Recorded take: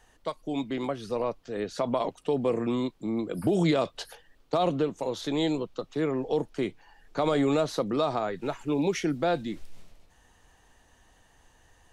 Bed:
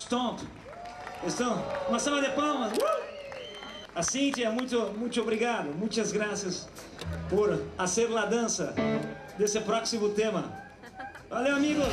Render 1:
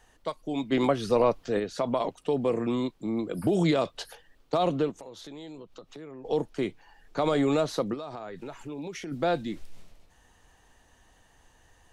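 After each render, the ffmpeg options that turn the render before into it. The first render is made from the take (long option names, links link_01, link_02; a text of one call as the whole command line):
ffmpeg -i in.wav -filter_complex "[0:a]asplit=3[link_01][link_02][link_03];[link_01]afade=type=out:start_time=0.71:duration=0.02[link_04];[link_02]acontrast=83,afade=type=in:start_time=0.71:duration=0.02,afade=type=out:start_time=1.58:duration=0.02[link_05];[link_03]afade=type=in:start_time=1.58:duration=0.02[link_06];[link_04][link_05][link_06]amix=inputs=3:normalize=0,asettb=1/sr,asplit=3[link_07][link_08][link_09];[link_07]atrim=end=4.914[link_10];[link_08]atrim=start=4.91:end=6.25,asetpts=PTS-STARTPTS,afade=type=in:duration=0.004:curve=qsin,afade=type=out:start_time=1.336:duration=0.004:curve=qsin,acompressor=threshold=-43dB:ratio=4:attack=3.2:release=140:knee=1:detection=peak[link_11];[link_09]atrim=start=6.246[link_12];[link_10][link_11]acrossfade=duration=0.004:curve1=hsin:curve2=qsin[link_13];[link_13][link_12]acrossfade=duration=0.004:curve1=qsin:curve2=hsin,asplit=3[link_14][link_15][link_16];[link_14]afade=type=out:start_time=7.93:duration=0.02[link_17];[link_15]acompressor=threshold=-36dB:ratio=4:attack=3.2:release=140:knee=1:detection=peak,afade=type=in:start_time=7.93:duration=0.02,afade=type=out:start_time=9.11:duration=0.02[link_18];[link_16]afade=type=in:start_time=9.11:duration=0.02[link_19];[link_17][link_18][link_19]amix=inputs=3:normalize=0" out.wav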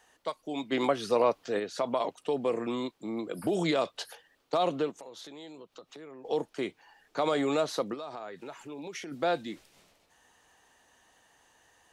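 ffmpeg -i in.wav -af "highpass=frequency=420:poles=1" out.wav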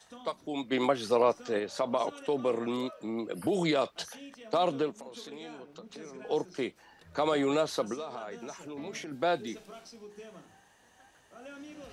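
ffmpeg -i in.wav -i bed.wav -filter_complex "[1:a]volume=-20.5dB[link_01];[0:a][link_01]amix=inputs=2:normalize=0" out.wav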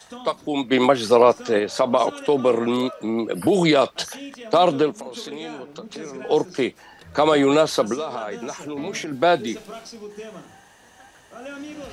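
ffmpeg -i in.wav -af "volume=11dB,alimiter=limit=-2dB:level=0:latency=1" out.wav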